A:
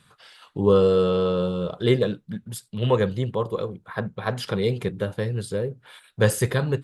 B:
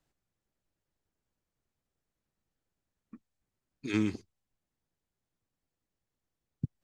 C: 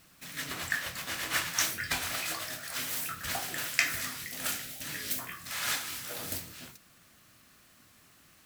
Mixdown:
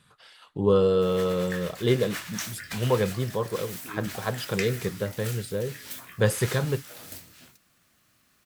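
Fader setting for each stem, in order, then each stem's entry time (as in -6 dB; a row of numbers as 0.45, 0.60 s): -3.0, -9.0, -5.5 dB; 0.00, 0.00, 0.80 s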